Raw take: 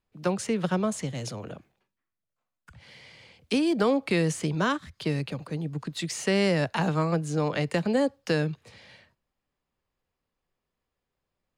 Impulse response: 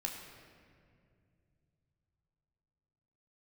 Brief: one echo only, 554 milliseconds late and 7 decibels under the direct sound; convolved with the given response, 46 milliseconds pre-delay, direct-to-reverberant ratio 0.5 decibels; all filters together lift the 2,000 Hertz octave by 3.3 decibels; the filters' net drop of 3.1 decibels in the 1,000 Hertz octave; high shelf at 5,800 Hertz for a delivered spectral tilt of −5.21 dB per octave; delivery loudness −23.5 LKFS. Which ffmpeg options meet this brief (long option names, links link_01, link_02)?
-filter_complex "[0:a]equalizer=frequency=1000:width_type=o:gain=-5.5,equalizer=frequency=2000:width_type=o:gain=5,highshelf=frequency=5800:gain=5.5,aecho=1:1:554:0.447,asplit=2[link_01][link_02];[1:a]atrim=start_sample=2205,adelay=46[link_03];[link_02][link_03]afir=irnorm=-1:irlink=0,volume=-1.5dB[link_04];[link_01][link_04]amix=inputs=2:normalize=0,volume=0.5dB"